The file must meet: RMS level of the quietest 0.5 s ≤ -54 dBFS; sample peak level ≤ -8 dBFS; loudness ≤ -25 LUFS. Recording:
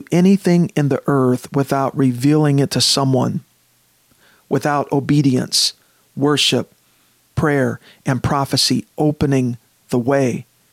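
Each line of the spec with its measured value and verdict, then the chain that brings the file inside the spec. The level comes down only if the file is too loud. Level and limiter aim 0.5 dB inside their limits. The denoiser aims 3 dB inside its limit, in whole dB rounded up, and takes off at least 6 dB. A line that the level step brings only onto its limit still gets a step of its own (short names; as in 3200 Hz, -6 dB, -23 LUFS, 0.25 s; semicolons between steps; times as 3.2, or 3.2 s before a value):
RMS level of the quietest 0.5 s -58 dBFS: OK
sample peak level -5.0 dBFS: fail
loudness -17.0 LUFS: fail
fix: gain -8.5 dB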